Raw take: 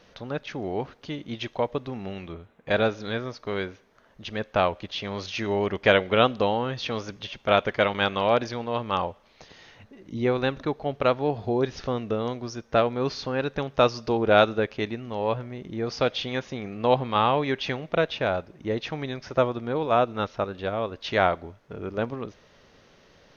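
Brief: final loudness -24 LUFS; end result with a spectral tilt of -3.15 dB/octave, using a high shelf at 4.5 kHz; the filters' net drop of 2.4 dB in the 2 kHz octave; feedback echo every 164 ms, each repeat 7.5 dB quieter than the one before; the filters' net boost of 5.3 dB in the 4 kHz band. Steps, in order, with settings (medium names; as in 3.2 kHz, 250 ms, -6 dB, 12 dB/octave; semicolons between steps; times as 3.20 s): peaking EQ 2 kHz -6.5 dB; peaking EQ 4 kHz +5.5 dB; treble shelf 4.5 kHz +7.5 dB; feedback delay 164 ms, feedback 42%, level -7.5 dB; trim +1.5 dB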